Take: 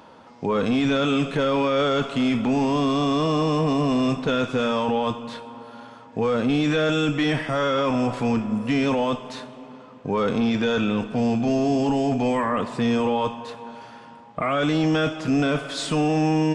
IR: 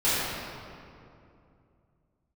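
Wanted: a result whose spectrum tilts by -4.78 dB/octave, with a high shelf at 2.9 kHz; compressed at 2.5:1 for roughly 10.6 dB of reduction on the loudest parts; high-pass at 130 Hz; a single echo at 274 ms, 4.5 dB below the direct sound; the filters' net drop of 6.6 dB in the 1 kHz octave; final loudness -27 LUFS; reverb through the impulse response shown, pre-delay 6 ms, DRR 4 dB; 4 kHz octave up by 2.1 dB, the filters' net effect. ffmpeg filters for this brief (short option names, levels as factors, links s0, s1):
-filter_complex "[0:a]highpass=130,equalizer=f=1000:t=o:g=-8.5,highshelf=f=2900:g=-7,equalizer=f=4000:t=o:g=8.5,acompressor=threshold=0.0158:ratio=2.5,aecho=1:1:274:0.596,asplit=2[s0][s1];[1:a]atrim=start_sample=2205,adelay=6[s2];[s1][s2]afir=irnorm=-1:irlink=0,volume=0.106[s3];[s0][s3]amix=inputs=2:normalize=0,volume=1.68"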